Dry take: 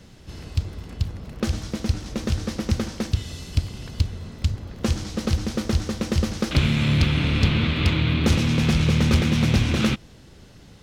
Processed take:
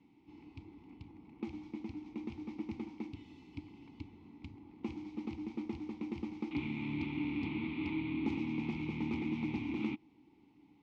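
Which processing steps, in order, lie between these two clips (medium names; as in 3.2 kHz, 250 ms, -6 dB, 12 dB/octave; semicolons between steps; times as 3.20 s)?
vowel filter u; treble shelf 7.2 kHz -9.5 dB; trim -2.5 dB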